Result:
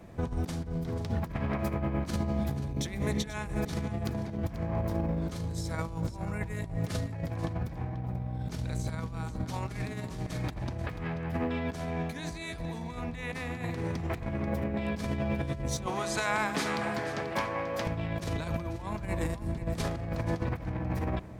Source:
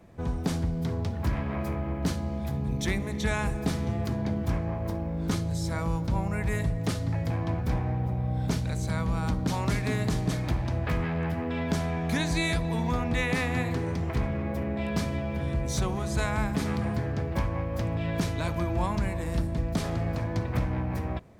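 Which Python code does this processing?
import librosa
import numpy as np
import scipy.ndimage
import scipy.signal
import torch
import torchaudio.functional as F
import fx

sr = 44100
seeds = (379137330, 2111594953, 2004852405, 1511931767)

y = fx.weighting(x, sr, curve='A', at=(15.86, 17.87))
y = fx.over_compress(y, sr, threshold_db=-32.0, ratio=-0.5)
y = y + 10.0 ** (-13.0 / 20.0) * np.pad(y, (int(487 * sr / 1000.0), 0))[:len(y)]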